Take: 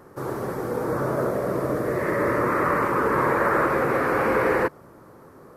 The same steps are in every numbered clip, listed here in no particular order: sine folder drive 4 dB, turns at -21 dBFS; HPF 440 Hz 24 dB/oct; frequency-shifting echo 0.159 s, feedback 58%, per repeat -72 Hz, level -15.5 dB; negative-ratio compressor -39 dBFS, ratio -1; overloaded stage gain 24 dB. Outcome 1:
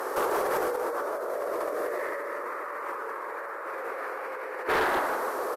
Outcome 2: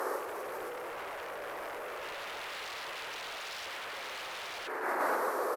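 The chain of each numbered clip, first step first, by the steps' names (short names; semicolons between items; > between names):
frequency-shifting echo > HPF > negative-ratio compressor > overloaded stage > sine folder; frequency-shifting echo > sine folder > HPF > overloaded stage > negative-ratio compressor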